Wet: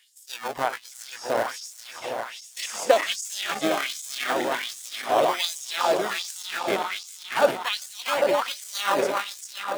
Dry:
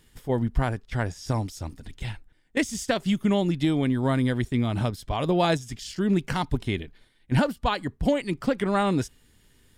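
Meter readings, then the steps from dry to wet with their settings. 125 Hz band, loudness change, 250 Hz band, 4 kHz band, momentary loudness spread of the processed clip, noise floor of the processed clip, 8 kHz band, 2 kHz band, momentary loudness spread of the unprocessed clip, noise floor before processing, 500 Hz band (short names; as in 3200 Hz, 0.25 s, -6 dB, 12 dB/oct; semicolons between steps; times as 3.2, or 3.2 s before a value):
-23.5 dB, 0.0 dB, -11.5 dB, +7.0 dB, 12 LU, -46 dBFS, +8.0 dB, +4.5 dB, 12 LU, -61 dBFS, +3.5 dB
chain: regenerating reverse delay 0.201 s, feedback 83%, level -5 dB; notches 60/120/180/240 Hz; in parallel at -5 dB: decimation with a swept rate 32×, swing 100% 0.32 Hz; on the sum: LFO high-pass sine 1.3 Hz 530–7400 Hz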